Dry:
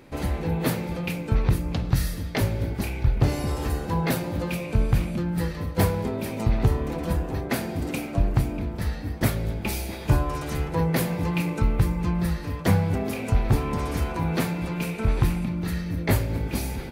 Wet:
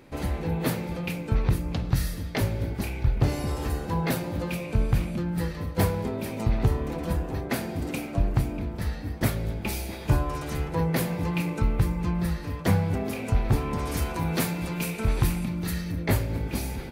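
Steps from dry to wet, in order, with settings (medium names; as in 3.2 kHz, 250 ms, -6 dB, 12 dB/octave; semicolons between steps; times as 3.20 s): 13.87–15.92 s: treble shelf 4.3 kHz +9 dB; trim -2 dB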